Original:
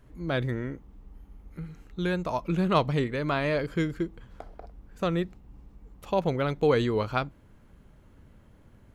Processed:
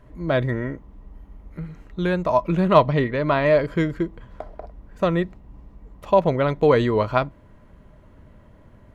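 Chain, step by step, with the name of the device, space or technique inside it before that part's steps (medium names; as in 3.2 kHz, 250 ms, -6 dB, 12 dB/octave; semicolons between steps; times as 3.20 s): 2.78–3.46 s: low-pass 5.9 kHz 24 dB/octave; inside a helmet (treble shelf 4.5 kHz -9 dB; small resonant body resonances 620/1000/1900 Hz, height 9 dB); trim +5.5 dB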